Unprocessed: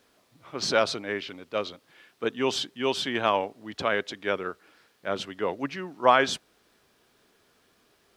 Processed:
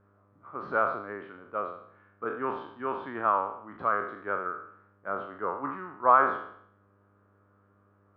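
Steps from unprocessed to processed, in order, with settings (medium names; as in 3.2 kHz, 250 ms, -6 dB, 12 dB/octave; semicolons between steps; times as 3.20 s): spectral sustain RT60 0.66 s; mains buzz 100 Hz, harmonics 6, -57 dBFS -5 dB/octave; four-pole ladder low-pass 1.4 kHz, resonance 65%; trim +2 dB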